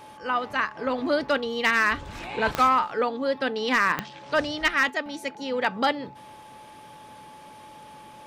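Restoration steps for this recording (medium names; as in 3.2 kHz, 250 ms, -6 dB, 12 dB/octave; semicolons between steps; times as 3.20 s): clip repair -13 dBFS; de-click; band-stop 860 Hz, Q 30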